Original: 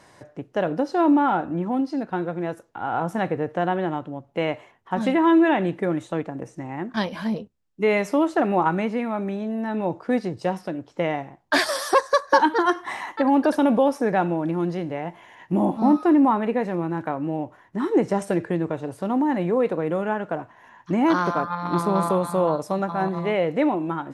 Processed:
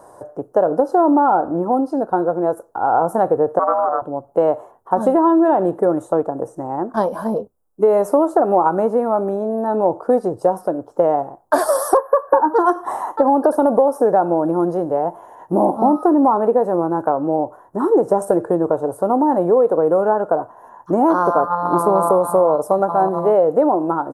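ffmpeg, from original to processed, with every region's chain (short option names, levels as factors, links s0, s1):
-filter_complex "[0:a]asettb=1/sr,asplit=3[s0][s1][s2];[s0]atrim=end=3.594[s3];[s1]atrim=start=3.59:end=4.02,asetpts=PTS-STARTPTS,afade=t=in:d=0.004:c=qsin,afade=t=out:st=0.426:d=0.004:c=qsin,aeval=exprs='val(0)*sin(2*PI*430*n/s)':c=same,highpass=470,equalizer=f=620:t=q:w=4:g=5,equalizer=f=1300:t=q:w=4:g=7,equalizer=f=2200:t=q:w=4:g=-8,lowpass=f=2400:w=0.5412,lowpass=f=2400:w=1.3066[s4];[s2]atrim=start=4.016[s5];[s3][s4]acrossfade=d=0.004:c1=hsin:c2=qsin[s6];[s6][s5]acrossfade=d=0.004:c1=qsin:c2=hsin,asettb=1/sr,asplit=3[s7][s8][s9];[s7]atrim=end=11.974[s10];[s8]atrim=start=11.97:end=12.54,asetpts=PTS-STARTPTS,afade=t=in:d=0.004:c=qsin,afade=t=out:st=0.566:d=0.004:c=qsin,asuperstop=centerf=5400:order=12:qfactor=0.58,asplit=2[s11][s12];[s12]adelay=13,volume=0.211[s13];[s11][s13]amix=inputs=2:normalize=0,atrim=end_sample=25137[s14];[s9]atrim=start=12.536[s15];[s10][s14]acrossfade=d=0.004:c1=hsin:c2=qsin[s16];[s16][s15]acrossfade=d=0.004:c1=qsin:c2=hsin,firequalizer=gain_entry='entry(170,0);entry(450,14);entry(730,14);entry(1400,6);entry(2100,-17);entry(9700,12)':delay=0.05:min_phase=1,acompressor=threshold=0.355:ratio=6,lowshelf=f=73:g=7.5,volume=0.841"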